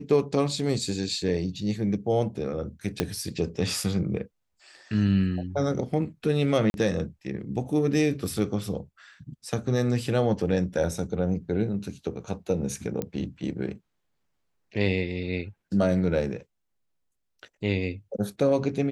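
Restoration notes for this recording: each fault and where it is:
3.00 s: pop -9 dBFS
6.70–6.74 s: dropout 41 ms
13.02 s: pop -16 dBFS

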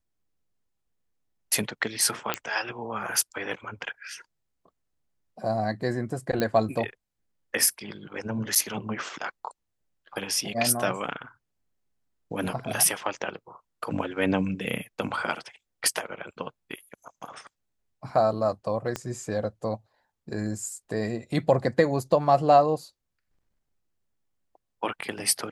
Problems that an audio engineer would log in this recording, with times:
2.34 s: pop -9 dBFS
6.40 s: pop -13 dBFS
8.55–8.56 s: dropout 7.2 ms
18.96 s: pop -15 dBFS

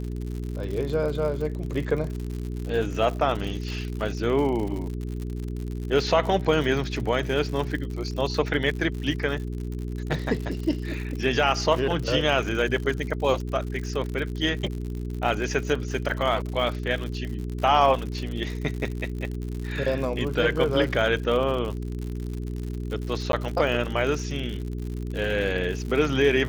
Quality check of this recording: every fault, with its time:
crackle 89 per s -31 dBFS
hum 60 Hz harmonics 7 -31 dBFS
23.32–23.33 s: dropout

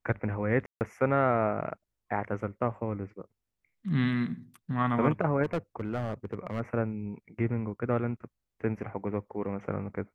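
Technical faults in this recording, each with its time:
0.66–0.81 s: dropout 149 ms
5.43–6.61 s: clipped -25.5 dBFS

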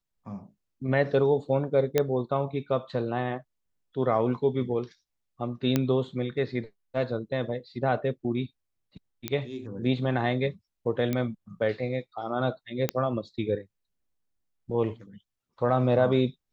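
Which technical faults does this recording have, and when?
1.98 s: pop -9 dBFS
5.76 s: pop -10 dBFS
9.28 s: pop -13 dBFS
11.13 s: pop -15 dBFS
12.89 s: pop -10 dBFS

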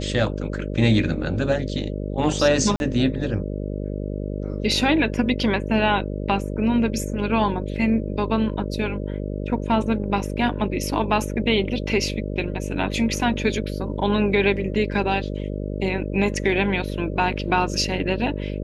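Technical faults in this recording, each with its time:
buzz 50 Hz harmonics 12 -28 dBFS
2.76–2.80 s: dropout 41 ms

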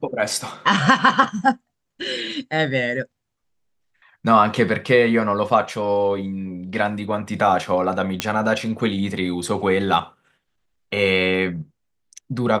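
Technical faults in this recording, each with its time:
8.20 s: pop -4 dBFS

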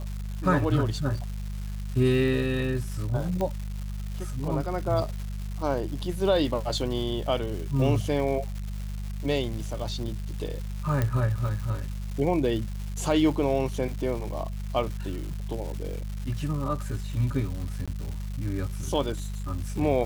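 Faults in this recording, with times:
crackle 410 per s -35 dBFS
hum 50 Hz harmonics 4 -33 dBFS
3.41 s: pop -17 dBFS
11.02 s: pop -13 dBFS
17.86–17.88 s: dropout 16 ms

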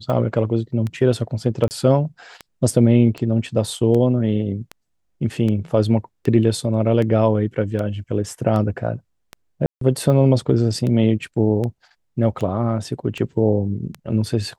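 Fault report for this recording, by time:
tick 78 rpm -15 dBFS
1.68–1.71 s: dropout 29 ms
9.66–9.81 s: dropout 153 ms

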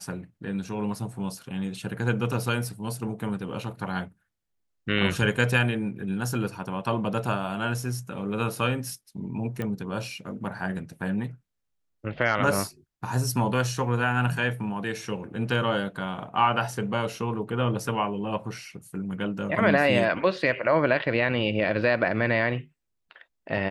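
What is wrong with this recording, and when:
9.62 s: pop -19 dBFS

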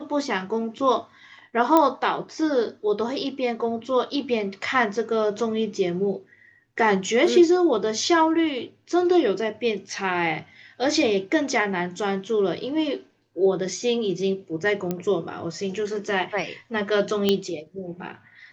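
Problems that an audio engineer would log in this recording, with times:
1.77 s: pop -6 dBFS
14.91 s: pop -13 dBFS
17.29 s: pop -7 dBFS

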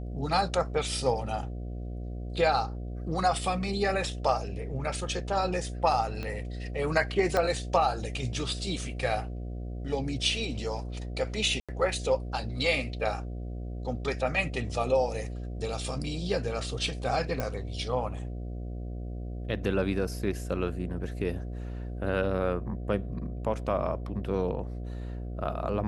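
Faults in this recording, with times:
buzz 60 Hz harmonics 12 -36 dBFS
6.23 s: pop -22 dBFS
7.37 s: pop -14 dBFS
11.60–11.69 s: dropout 86 ms
17.40 s: pop -17 dBFS

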